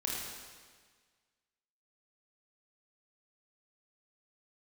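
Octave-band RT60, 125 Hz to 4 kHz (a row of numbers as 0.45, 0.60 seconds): 1.6, 1.6, 1.6, 1.6, 1.6, 1.5 seconds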